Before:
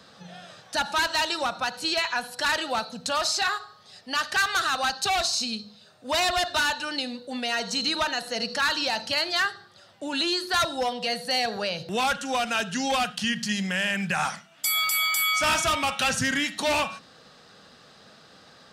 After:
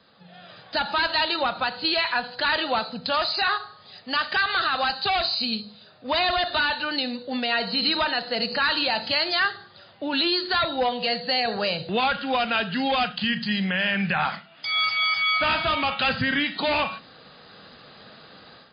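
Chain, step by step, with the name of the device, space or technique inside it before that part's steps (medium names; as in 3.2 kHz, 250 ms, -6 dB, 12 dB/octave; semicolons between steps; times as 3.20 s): low-bitrate web radio (level rider gain up to 11.5 dB; peak limiter -7 dBFS, peak gain reduction 4 dB; trim -6 dB; MP3 24 kbps 11.025 kHz)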